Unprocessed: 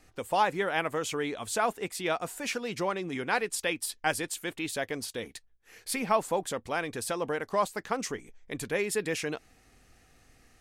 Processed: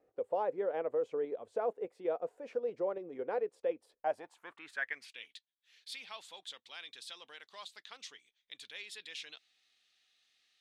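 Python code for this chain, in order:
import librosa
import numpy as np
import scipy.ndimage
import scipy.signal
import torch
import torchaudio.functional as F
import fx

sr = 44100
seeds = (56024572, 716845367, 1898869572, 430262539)

p1 = fx.filter_sweep_bandpass(x, sr, from_hz=500.0, to_hz=3600.0, start_s=3.9, end_s=5.41, q=4.6)
p2 = fx.level_steps(p1, sr, step_db=21)
y = p1 + (p2 * librosa.db_to_amplitude(-1.5))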